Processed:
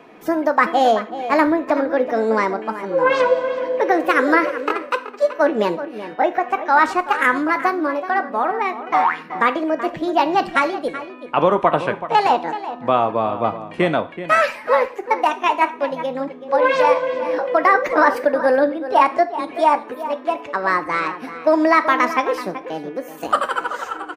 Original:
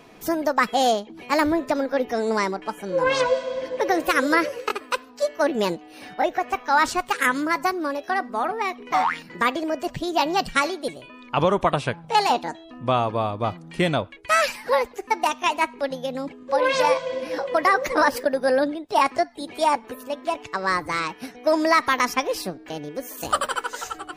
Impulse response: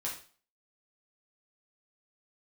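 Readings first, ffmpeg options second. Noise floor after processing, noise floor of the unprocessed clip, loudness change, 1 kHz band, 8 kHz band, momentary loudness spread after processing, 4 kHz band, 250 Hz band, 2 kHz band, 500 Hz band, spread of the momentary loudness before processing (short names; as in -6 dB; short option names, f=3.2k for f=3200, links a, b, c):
-37 dBFS, -46 dBFS, +4.5 dB, +5.0 dB, n/a, 9 LU, -3.0 dB, +4.5 dB, +4.0 dB, +5.0 dB, 10 LU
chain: -filter_complex "[0:a]acrossover=split=180 2700:gain=0.158 1 0.2[a][b][c];[a][b][c]amix=inputs=3:normalize=0,asplit=2[d][e];[e]adelay=379,volume=-12dB,highshelf=f=4k:g=-8.53[f];[d][f]amix=inputs=2:normalize=0,asplit=2[g][h];[1:a]atrim=start_sample=2205[i];[h][i]afir=irnorm=-1:irlink=0,volume=-9.5dB[j];[g][j]amix=inputs=2:normalize=0,volume=3dB"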